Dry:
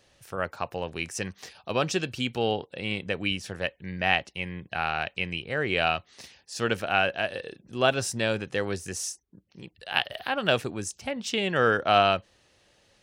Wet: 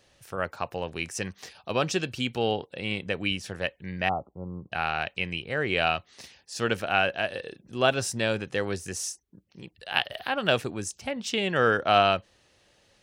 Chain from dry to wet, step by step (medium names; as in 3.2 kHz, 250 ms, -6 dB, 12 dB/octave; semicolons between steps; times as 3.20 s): 4.09–4.72 s: brick-wall FIR low-pass 1.4 kHz